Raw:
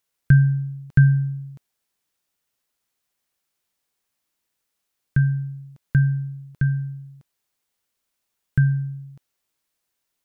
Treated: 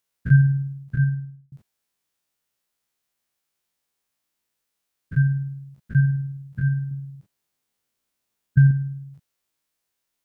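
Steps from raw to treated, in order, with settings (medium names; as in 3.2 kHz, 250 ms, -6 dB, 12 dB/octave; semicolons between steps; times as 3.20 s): spectrogram pixelated in time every 50 ms; 0.60–1.52 s: fade out; 6.91–8.71 s: peaking EQ 200 Hz +5 dB 2.4 oct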